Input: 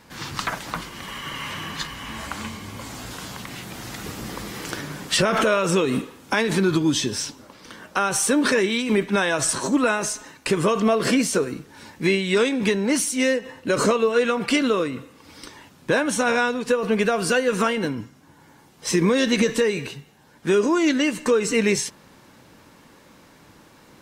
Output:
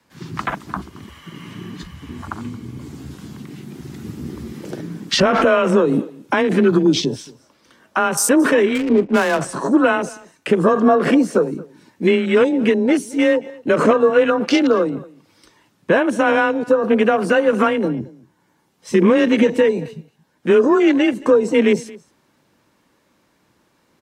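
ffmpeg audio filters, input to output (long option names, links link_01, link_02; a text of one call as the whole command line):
ffmpeg -i in.wav -filter_complex "[0:a]afwtdn=0.0447,acrossover=split=280|1500|3100[link_01][link_02][link_03][link_04];[link_03]alimiter=level_in=3.5dB:limit=-24dB:level=0:latency=1:release=443,volume=-3.5dB[link_05];[link_01][link_02][link_05][link_04]amix=inputs=4:normalize=0,afreqshift=21,asettb=1/sr,asplit=3[link_06][link_07][link_08];[link_06]atrim=end=8.754[link_09];[link_07]atrim=start=8.75:end=9.41,asetpts=PTS-STARTPTS,afade=type=in:duration=0.004:curve=qsin,afade=type=out:start_time=0.656:duration=0.004:curve=qsin,adynamicsmooth=sensitivity=5:basefreq=570[link_10];[link_08]atrim=start=9.406[link_11];[link_09][link_10]acrossfade=duration=0.004:curve1=hsin:curve2=qsin[link_12];[link_12][link_11]acrossfade=duration=0.004:curve1=qsin:curve2=hsin,aecho=1:1:224:0.0794,volume=6dB" out.wav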